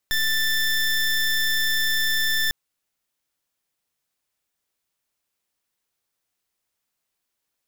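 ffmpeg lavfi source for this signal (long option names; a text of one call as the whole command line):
ffmpeg -f lavfi -i "aevalsrc='0.0841*(2*lt(mod(1770*t,1),0.21)-1)':duration=2.4:sample_rate=44100" out.wav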